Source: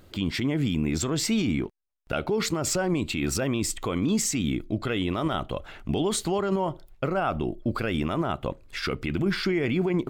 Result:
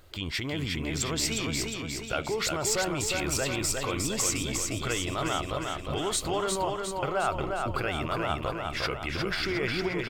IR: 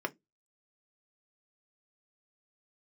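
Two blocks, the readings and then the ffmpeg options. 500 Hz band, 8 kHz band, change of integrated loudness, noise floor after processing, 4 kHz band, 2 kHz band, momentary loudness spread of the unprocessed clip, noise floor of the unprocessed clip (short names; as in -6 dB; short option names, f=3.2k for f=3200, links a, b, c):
-2.5 dB, +2.0 dB, -2.0 dB, -37 dBFS, +2.0 dB, +1.5 dB, 7 LU, -53 dBFS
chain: -af "equalizer=f=220:t=o:w=1.4:g=-13,aecho=1:1:357|714|1071|1428|1785|2142|2499:0.631|0.347|0.191|0.105|0.0577|0.0318|0.0175"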